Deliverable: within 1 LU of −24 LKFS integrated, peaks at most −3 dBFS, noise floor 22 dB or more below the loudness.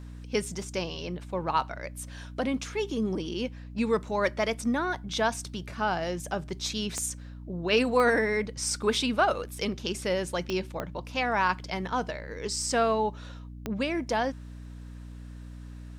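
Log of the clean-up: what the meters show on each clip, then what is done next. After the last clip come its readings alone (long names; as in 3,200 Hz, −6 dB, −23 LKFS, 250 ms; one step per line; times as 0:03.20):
number of clicks 5; mains hum 60 Hz; hum harmonics up to 300 Hz; level of the hum −40 dBFS; integrated loudness −29.5 LKFS; sample peak −11.0 dBFS; target loudness −24.0 LKFS
→ click removal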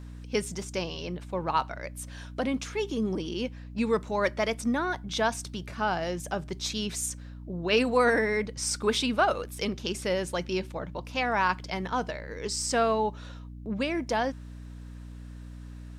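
number of clicks 0; mains hum 60 Hz; hum harmonics up to 300 Hz; level of the hum −40 dBFS
→ hum removal 60 Hz, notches 5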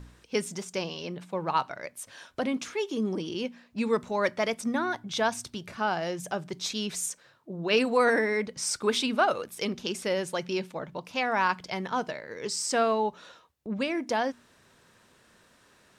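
mains hum none found; integrated loudness −29.5 LKFS; sample peak −11.5 dBFS; target loudness −24.0 LKFS
→ level +5.5 dB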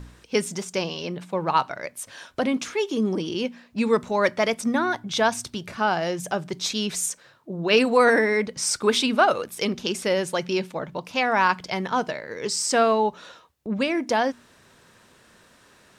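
integrated loudness −24.0 LKFS; sample peak −6.0 dBFS; background noise floor −56 dBFS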